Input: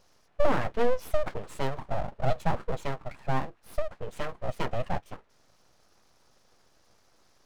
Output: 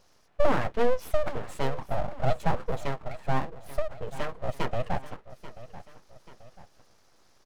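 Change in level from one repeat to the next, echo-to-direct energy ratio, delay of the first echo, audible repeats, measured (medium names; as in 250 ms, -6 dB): -6.5 dB, -14.5 dB, 836 ms, 2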